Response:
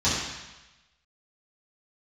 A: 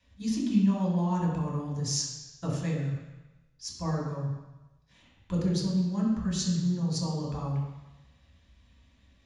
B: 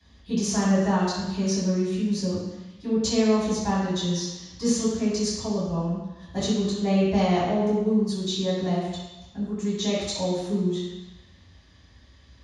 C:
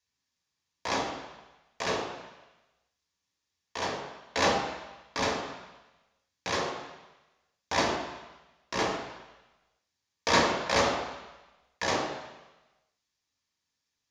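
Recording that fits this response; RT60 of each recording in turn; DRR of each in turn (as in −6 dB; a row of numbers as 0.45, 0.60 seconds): B; 1.1, 1.1, 1.1 seconds; −4.5, −13.0, 0.5 decibels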